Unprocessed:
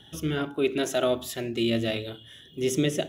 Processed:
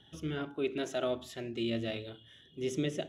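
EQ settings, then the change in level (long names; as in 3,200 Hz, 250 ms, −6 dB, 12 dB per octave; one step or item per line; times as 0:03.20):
high-frequency loss of the air 58 metres
−8.0 dB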